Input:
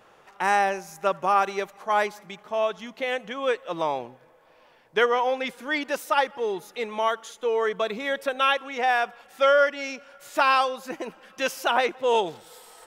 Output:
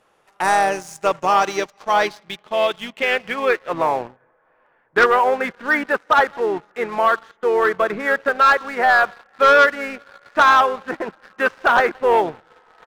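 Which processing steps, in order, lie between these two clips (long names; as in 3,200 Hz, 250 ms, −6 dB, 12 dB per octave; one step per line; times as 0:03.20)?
low-pass filter sweep 11,000 Hz → 1,600 Hz, 0:00.48–0:04.02
pitch-shifted copies added −4 semitones −12 dB
leveller curve on the samples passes 2
level −2 dB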